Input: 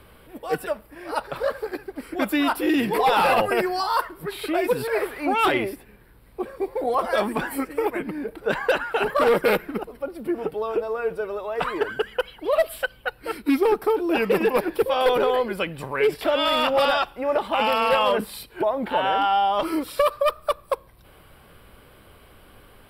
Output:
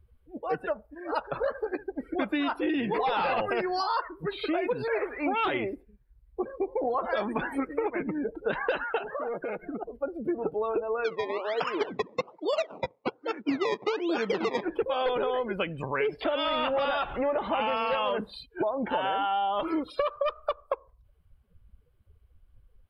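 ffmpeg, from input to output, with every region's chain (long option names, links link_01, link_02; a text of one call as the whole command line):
ffmpeg -i in.wav -filter_complex "[0:a]asettb=1/sr,asplit=3[link_01][link_02][link_03];[link_01]atrim=end=8.984[link_04];[link_02]atrim=start=8.98:end=9.88,asetpts=PTS-STARTPTS,afade=type=in:duration=0.004:curve=qsin,afade=type=out:start_time=0.896:duration=0.004:curve=qsin,acompressor=threshold=-30dB:ratio=20:attack=3.2:release=140:knee=1:detection=peak,equalizer=frequency=690:width=7:gain=9[link_05];[link_03]atrim=start=9.876[link_06];[link_04][link_05]acrossfade=duration=0.004:curve1=hsin:curve2=qsin[link_07];[link_07][link_06]acrossfade=duration=0.004:curve1=qsin:curve2=hsin,asettb=1/sr,asplit=3[link_08][link_09][link_10];[link_08]atrim=end=11.044[link_11];[link_09]atrim=start=11.04:end=14.63,asetpts=PTS-STARTPTS,afade=type=in:duration=0.004:curve=qsin,afade=type=out:start_time=3.586:duration=0.004:curve=qsin,acrusher=samples=21:mix=1:aa=0.000001:lfo=1:lforange=21:lforate=1.2,highpass=180,lowpass=4800[link_12];[link_10]atrim=start=14.626[link_13];[link_11][link_12]acrossfade=duration=0.004:curve1=hsin:curve2=qsin[link_14];[link_14][link_13]acrossfade=duration=0.004:curve1=qsin:curve2=hsin,asettb=1/sr,asplit=3[link_15][link_16][link_17];[link_15]atrim=end=16.454[link_18];[link_16]atrim=start=16.45:end=17.77,asetpts=PTS-STARTPTS,afade=type=in:duration=0.004:curve=qsin,afade=type=out:start_time=1.316:duration=0.004:curve=qsin,aeval=exprs='val(0)+0.5*0.0376*sgn(val(0))':channel_layout=same,equalizer=frequency=7400:width=0.95:gain=-11[link_19];[link_17]atrim=start=17.766[link_20];[link_18][link_19]acrossfade=duration=0.004:curve1=hsin:curve2=qsin[link_21];[link_21][link_20]acrossfade=duration=0.004:curve1=qsin:curve2=hsin,acrossover=split=8800[link_22][link_23];[link_23]acompressor=threshold=-50dB:ratio=4:attack=1:release=60[link_24];[link_22][link_24]amix=inputs=2:normalize=0,afftdn=noise_reduction=30:noise_floor=-37,acompressor=threshold=-25dB:ratio=6" out.wav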